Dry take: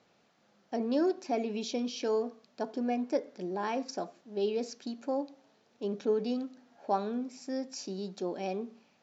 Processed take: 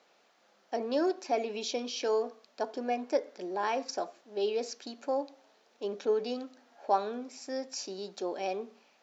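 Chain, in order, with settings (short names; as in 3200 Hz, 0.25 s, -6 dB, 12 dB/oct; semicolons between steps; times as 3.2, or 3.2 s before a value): HPF 420 Hz 12 dB/oct; gain +3.5 dB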